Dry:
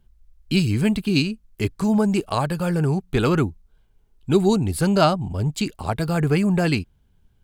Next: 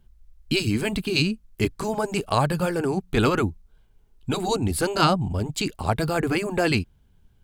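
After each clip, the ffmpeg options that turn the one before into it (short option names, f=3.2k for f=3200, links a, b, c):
-af "afftfilt=real='re*lt(hypot(re,im),0.891)':imag='im*lt(hypot(re,im),0.891)':win_size=1024:overlap=0.75,volume=1.5dB"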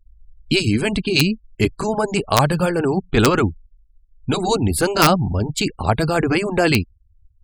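-af "aeval=exprs='(mod(2.51*val(0)+1,2)-1)/2.51':c=same,afftfilt=real='re*gte(hypot(re,im),0.01)':imag='im*gte(hypot(re,im),0.01)':win_size=1024:overlap=0.75,volume=5.5dB"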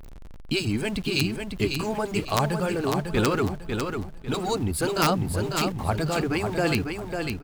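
-filter_complex "[0:a]aeval=exprs='val(0)+0.5*0.0422*sgn(val(0))':c=same,asplit=2[a][b];[b]aecho=0:1:549|1098|1647|2196:0.531|0.165|0.051|0.0158[c];[a][c]amix=inputs=2:normalize=0,volume=-9dB"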